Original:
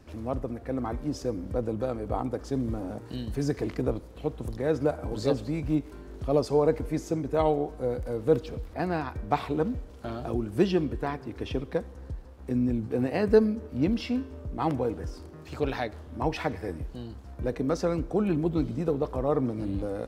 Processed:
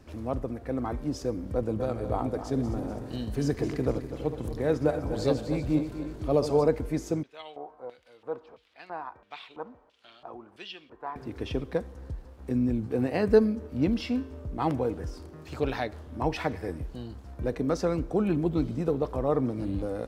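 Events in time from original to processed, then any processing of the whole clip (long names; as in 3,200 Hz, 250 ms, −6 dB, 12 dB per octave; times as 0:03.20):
0:01.45–0:06.68: feedback delay that plays each chunk backwards 124 ms, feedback 72%, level −10 dB
0:07.23–0:11.16: auto-filter band-pass square 1.5 Hz 960–3,100 Hz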